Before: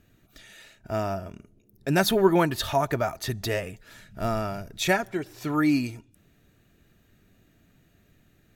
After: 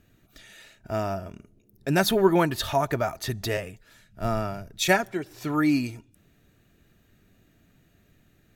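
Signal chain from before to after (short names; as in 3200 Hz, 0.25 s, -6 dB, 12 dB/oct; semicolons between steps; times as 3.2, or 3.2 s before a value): 3.57–5.31 three-band expander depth 40%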